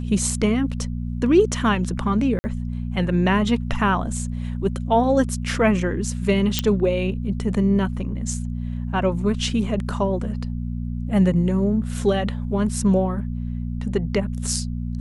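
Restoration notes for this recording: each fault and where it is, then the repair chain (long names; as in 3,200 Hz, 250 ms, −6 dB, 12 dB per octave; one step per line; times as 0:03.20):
mains hum 60 Hz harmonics 4 −27 dBFS
0:02.39–0:02.44: drop-out 50 ms
0:06.59: click −3 dBFS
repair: click removal
hum removal 60 Hz, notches 4
repair the gap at 0:02.39, 50 ms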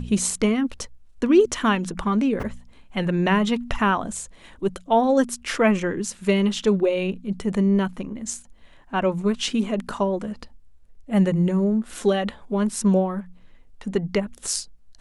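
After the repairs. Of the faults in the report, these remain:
none of them is left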